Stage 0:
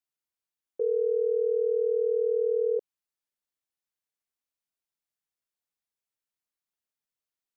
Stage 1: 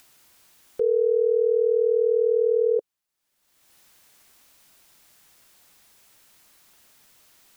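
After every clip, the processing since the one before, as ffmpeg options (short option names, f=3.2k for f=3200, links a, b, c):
-af "acompressor=mode=upward:threshold=-42dB:ratio=2.5,equalizer=f=460:w=6.7:g=-2.5,volume=7dB"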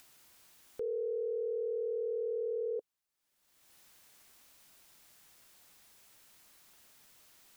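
-af "alimiter=level_in=2dB:limit=-24dB:level=0:latency=1:release=15,volume=-2dB,volume=-4.5dB"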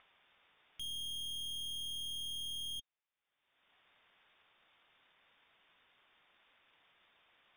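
-af "lowpass=f=3.1k:t=q:w=0.5098,lowpass=f=3.1k:t=q:w=0.6013,lowpass=f=3.1k:t=q:w=0.9,lowpass=f=3.1k:t=q:w=2.563,afreqshift=-3700,aeval=exprs='(tanh(158*val(0)+0.65)-tanh(0.65))/158':c=same,volume=3dB"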